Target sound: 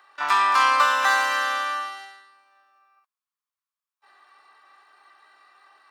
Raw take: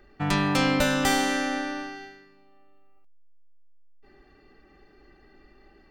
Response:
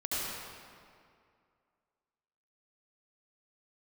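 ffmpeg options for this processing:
-filter_complex "[0:a]acrossover=split=4200[a][b];[b]acompressor=threshold=-43dB:ratio=4:attack=1:release=60[c];[a][c]amix=inputs=2:normalize=0,asplit=2[d][e];[e]asetrate=88200,aresample=44100,atempo=0.5,volume=-6dB[f];[d][f]amix=inputs=2:normalize=0,highpass=f=1.1k:t=q:w=4.9"

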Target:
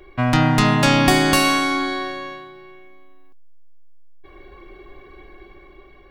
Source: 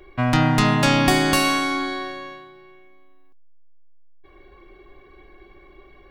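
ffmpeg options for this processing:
-af "dynaudnorm=f=360:g=5:m=4dB,volume=1.5dB"

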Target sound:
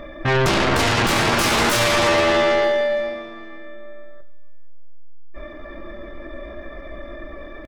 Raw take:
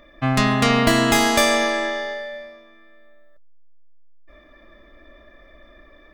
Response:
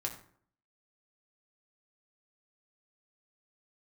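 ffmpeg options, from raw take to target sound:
-filter_complex "[0:a]highshelf=f=2.1k:g=-11.5,aeval=exprs='(tanh(8.91*val(0)+0.1)-tanh(0.1))/8.91':c=same,aeval=exprs='0.126*sin(PI/2*2.51*val(0)/0.126)':c=same,atempo=0.8,aecho=1:1:464|928:0.0668|0.0214,asplit=2[a][b];[1:a]atrim=start_sample=2205[c];[b][c]afir=irnorm=-1:irlink=0,volume=-4dB[d];[a][d]amix=inputs=2:normalize=0"

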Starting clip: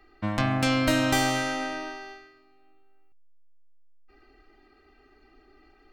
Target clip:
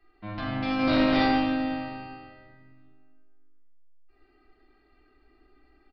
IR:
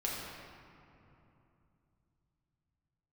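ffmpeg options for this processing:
-filter_complex "[0:a]asettb=1/sr,asplit=3[a][b][c];[a]atrim=end=0.794[d];[b]atrim=start=0.79:end=1.25,asetpts=PTS-STARTPTS,afade=t=in:d=0.004:c=qsin,afade=t=out:st=0.456:d=0.004:c=qsin,acontrast=77[e];[c]atrim=start=1.246[f];[d][e]acrossfade=d=0.004:c1=hsin:c2=qsin[g];[g][f]acrossfade=d=0.004:c1=qsin:c2=hsin,aeval=exprs='0.251*(abs(mod(val(0)/0.251+3,4)-2)-1)':c=same[h];[1:a]atrim=start_sample=2205,asetrate=74970,aresample=44100[i];[h][i]afir=irnorm=-1:irlink=0,aresample=11025,aresample=44100,asplit=2[j][k];[k]adelay=130,highpass=300,lowpass=3.4k,asoftclip=type=hard:threshold=-16dB,volume=-28dB[l];[j][l]amix=inputs=2:normalize=0,volume=-5.5dB"

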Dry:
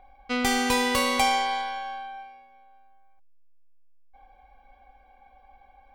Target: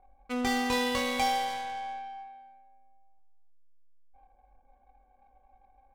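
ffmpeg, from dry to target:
-filter_complex "[0:a]asplit=2[a][b];[b]adelay=24,volume=-4.5dB[c];[a][c]amix=inputs=2:normalize=0,adynamicsmooth=sensitivity=7:basefreq=800,asplit=2[d][e];[e]adelay=290,highpass=300,lowpass=3.4k,asoftclip=type=hard:threshold=-20dB,volume=-12dB[f];[d][f]amix=inputs=2:normalize=0,volume=-6.5dB"

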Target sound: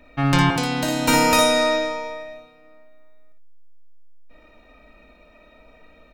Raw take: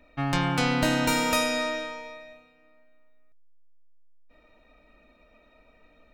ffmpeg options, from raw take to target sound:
-filter_complex "[0:a]asettb=1/sr,asplit=3[a][b][c];[a]atrim=end=0.504[d];[b]atrim=start=0.5:end=1.08,asetpts=PTS-STARTPTS,afade=t=in:d=0.004:c=qsin,afade=t=out:st=0.576:d=0.004:c=qsin,acrossover=split=170|1000|3500[e][f][g][h];[e]acompressor=threshold=-47dB:ratio=4[i];[f]acompressor=threshold=-31dB:ratio=4[j];[g]acompressor=threshold=-43dB:ratio=4[k];[h]acompressor=threshold=-36dB:ratio=4[l];[i][j][k][l]amix=inputs=4:normalize=0[m];[c]atrim=start=1.076[n];[d][m]acrossfade=d=0.004:c1=hsin:c2=qsin[o];[o][n]acrossfade=d=0.004:c1=qsin:c2=hsin,asplit=2[p][q];[q]aecho=0:1:58|77:0.596|0.168[r];[p][r]amix=inputs=2:normalize=0,volume=6.5dB"

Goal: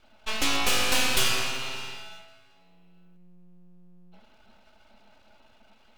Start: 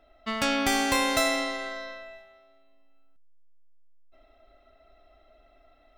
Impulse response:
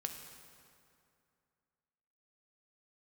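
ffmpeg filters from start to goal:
-filter_complex "[0:a]afreqshift=89,aeval=exprs='abs(val(0))':c=same,asplit=2[a][b];[b]highpass=f=2.4k:t=q:w=5.1[c];[1:a]atrim=start_sample=2205[d];[c][d]afir=irnorm=-1:irlink=0,volume=-11dB[e];[a][e]amix=inputs=2:normalize=0,volume=2.5dB"

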